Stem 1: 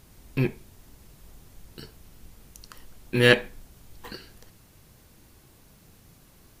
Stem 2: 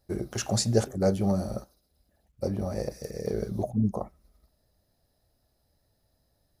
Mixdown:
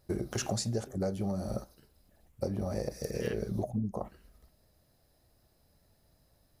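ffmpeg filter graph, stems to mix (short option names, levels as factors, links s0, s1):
-filter_complex "[0:a]equalizer=f=4700:t=o:w=0.63:g=-14,volume=0.112[s0];[1:a]volume=1.33[s1];[s0][s1]amix=inputs=2:normalize=0,acompressor=threshold=0.0355:ratio=12"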